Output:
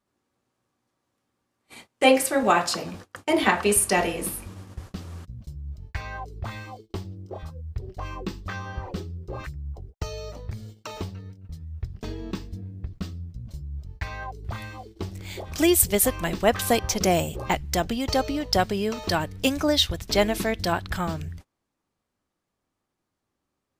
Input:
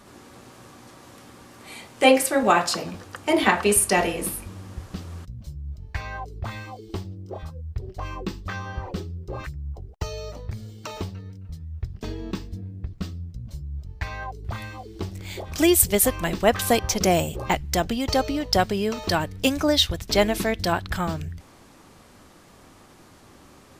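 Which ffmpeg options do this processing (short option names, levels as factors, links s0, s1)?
-af "agate=range=0.0355:threshold=0.0112:ratio=16:detection=peak,volume=0.841"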